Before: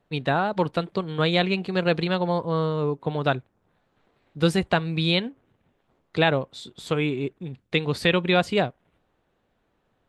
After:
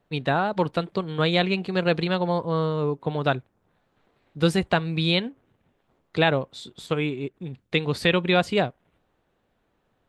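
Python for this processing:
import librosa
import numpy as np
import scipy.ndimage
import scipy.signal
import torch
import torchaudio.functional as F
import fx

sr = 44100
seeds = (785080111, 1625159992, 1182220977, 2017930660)

y = fx.upward_expand(x, sr, threshold_db=-37.0, expansion=1.5, at=(6.86, 7.34))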